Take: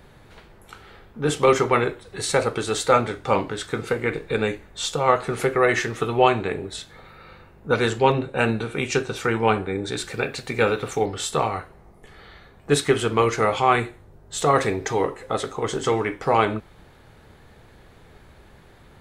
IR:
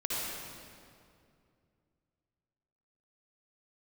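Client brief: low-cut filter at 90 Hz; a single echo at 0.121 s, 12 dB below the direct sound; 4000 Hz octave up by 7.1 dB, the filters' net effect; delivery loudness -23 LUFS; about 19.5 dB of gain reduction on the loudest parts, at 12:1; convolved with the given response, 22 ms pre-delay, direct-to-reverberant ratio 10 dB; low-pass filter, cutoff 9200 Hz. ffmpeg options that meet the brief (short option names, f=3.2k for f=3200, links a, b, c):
-filter_complex "[0:a]highpass=90,lowpass=9.2k,equalizer=f=4k:t=o:g=8.5,acompressor=threshold=-32dB:ratio=12,aecho=1:1:121:0.251,asplit=2[a][b];[1:a]atrim=start_sample=2205,adelay=22[c];[b][c]afir=irnorm=-1:irlink=0,volume=-16.5dB[d];[a][d]amix=inputs=2:normalize=0,volume=13dB"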